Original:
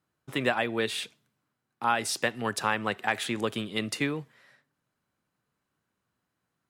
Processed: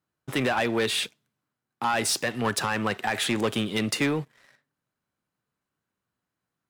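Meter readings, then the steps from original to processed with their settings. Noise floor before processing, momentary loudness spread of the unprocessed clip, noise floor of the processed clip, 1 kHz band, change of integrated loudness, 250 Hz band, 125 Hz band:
−83 dBFS, 6 LU, below −85 dBFS, +1.5 dB, +3.0 dB, +5.0 dB, +5.5 dB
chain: brickwall limiter −17 dBFS, peak gain reduction 6 dB
leveller curve on the samples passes 2

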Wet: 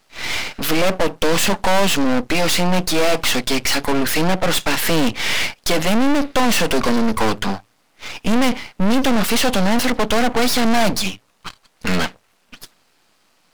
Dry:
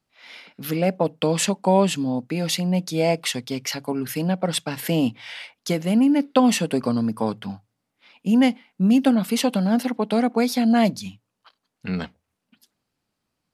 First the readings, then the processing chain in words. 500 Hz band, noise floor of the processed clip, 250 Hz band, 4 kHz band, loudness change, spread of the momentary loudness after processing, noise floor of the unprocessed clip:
+4.0 dB, −61 dBFS, +0.5 dB, +9.5 dB, +3.5 dB, 8 LU, −79 dBFS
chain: mid-hump overdrive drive 33 dB, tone 5,700 Hz, clips at −4.5 dBFS
half-wave rectification

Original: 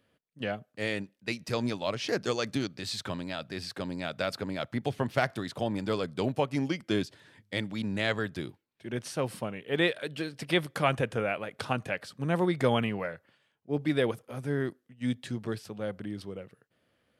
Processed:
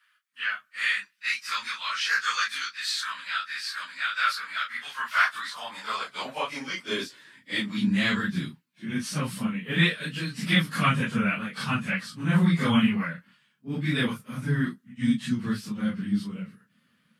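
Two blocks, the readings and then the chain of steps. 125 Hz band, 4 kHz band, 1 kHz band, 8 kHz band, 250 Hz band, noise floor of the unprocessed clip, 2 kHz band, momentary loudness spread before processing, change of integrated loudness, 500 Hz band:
+5.0 dB, +6.5 dB, +4.5 dB, +6.0 dB, +5.5 dB, −74 dBFS, +8.5 dB, 10 LU, +4.5 dB, −8.5 dB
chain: random phases in long frames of 100 ms
high-pass filter sweep 1,400 Hz → 190 Hz, 0:04.92–0:08.31
flat-topped bell 500 Hz −15 dB
level +6 dB

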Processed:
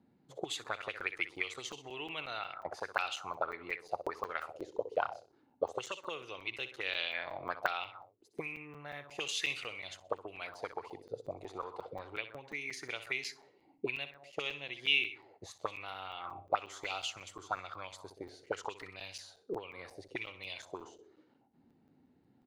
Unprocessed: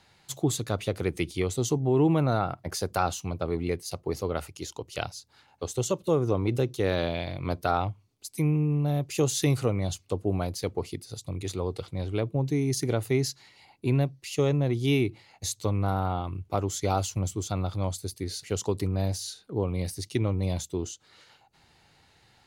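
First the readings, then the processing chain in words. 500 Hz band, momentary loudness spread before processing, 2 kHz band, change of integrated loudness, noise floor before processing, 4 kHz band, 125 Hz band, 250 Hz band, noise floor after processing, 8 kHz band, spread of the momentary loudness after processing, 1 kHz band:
−12.5 dB, 10 LU, +2.5 dB, −10.0 dB, −62 dBFS, −1.5 dB, −30.0 dB, −21.5 dB, −70 dBFS, −15.0 dB, 11 LU, −6.5 dB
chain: dynamic equaliser 200 Hz, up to −7 dB, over −41 dBFS, Q 1.5
on a send: repeating echo 63 ms, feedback 44%, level −12 dB
on the sum: envelope filter 240–2,800 Hz, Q 4.8, up, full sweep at −24 dBFS
regular buffer underruns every 0.18 s, samples 256, zero, from 0:00.64
level +9 dB

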